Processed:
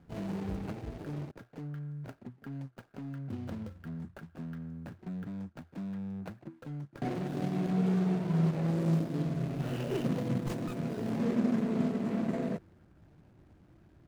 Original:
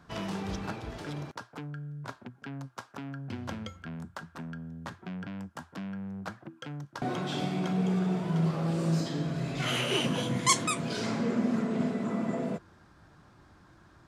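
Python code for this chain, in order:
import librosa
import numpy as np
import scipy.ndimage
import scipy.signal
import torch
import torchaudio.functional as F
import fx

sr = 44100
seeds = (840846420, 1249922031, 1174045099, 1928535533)

y = scipy.signal.medfilt(x, 41)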